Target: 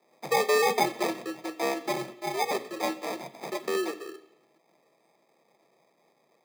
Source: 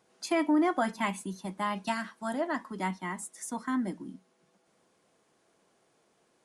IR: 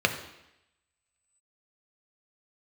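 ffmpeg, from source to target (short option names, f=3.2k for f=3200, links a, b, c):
-filter_complex "[0:a]acrusher=samples=32:mix=1:aa=0.000001,asplit=2[a][b];[1:a]atrim=start_sample=2205,highshelf=f=2.1k:g=10[c];[b][c]afir=irnorm=-1:irlink=0,volume=-19dB[d];[a][d]amix=inputs=2:normalize=0,afreqshift=130"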